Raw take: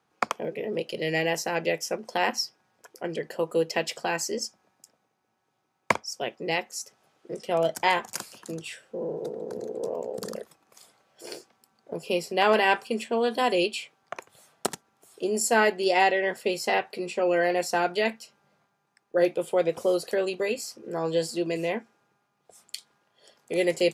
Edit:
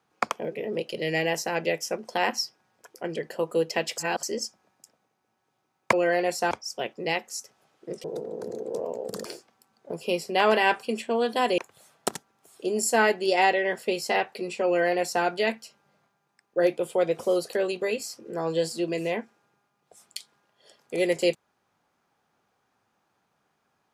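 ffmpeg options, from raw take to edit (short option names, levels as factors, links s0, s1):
-filter_complex "[0:a]asplit=8[s0][s1][s2][s3][s4][s5][s6][s7];[s0]atrim=end=3.982[s8];[s1]atrim=start=3.978:end=4.232,asetpts=PTS-STARTPTS,areverse[s9];[s2]atrim=start=4.228:end=5.932[s10];[s3]atrim=start=17.238:end=17.822[s11];[s4]atrim=start=5.928:end=7.462[s12];[s5]atrim=start=9.128:end=10.342[s13];[s6]atrim=start=11.268:end=13.602[s14];[s7]atrim=start=14.158[s15];[s8][s9]acrossfade=d=0.004:c1=hsin:c2=hsin[s16];[s16][s10]acrossfade=d=0.004:c1=hsin:c2=hsin[s17];[s17][s11]acrossfade=d=0.004:c1=hsin:c2=hsin[s18];[s18][s12]acrossfade=d=0.004:c1=hsin:c2=hsin[s19];[s19][s13]acrossfade=d=0.004:c1=hsin:c2=hsin[s20];[s20][s14]acrossfade=d=0.004:c1=hsin:c2=hsin[s21];[s21][s15]acrossfade=d=0.004:c1=hsin:c2=hsin"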